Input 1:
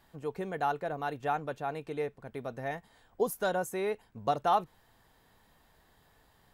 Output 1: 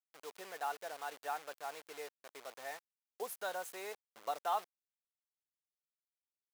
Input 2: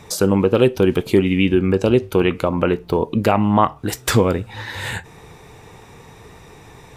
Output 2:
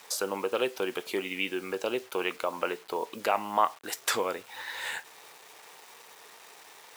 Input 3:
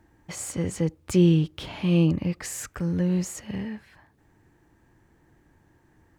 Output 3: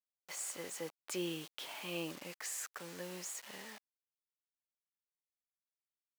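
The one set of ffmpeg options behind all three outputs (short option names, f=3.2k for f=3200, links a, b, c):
-af "acrusher=bits=6:mix=0:aa=0.000001,highpass=630,volume=-7dB"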